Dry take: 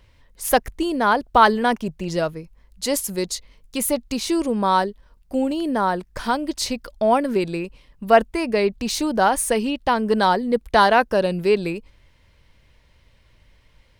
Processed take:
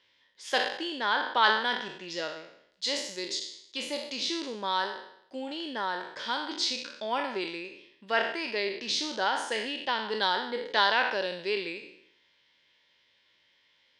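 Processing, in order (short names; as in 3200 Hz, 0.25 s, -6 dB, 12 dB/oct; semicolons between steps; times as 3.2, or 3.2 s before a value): spectral trails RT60 0.71 s; speaker cabinet 420–6200 Hz, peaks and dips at 470 Hz -4 dB, 690 Hz -9 dB, 1200 Hz -6 dB, 1800 Hz +4 dB, 3400 Hz +10 dB, 5000 Hz +4 dB; gain -8.5 dB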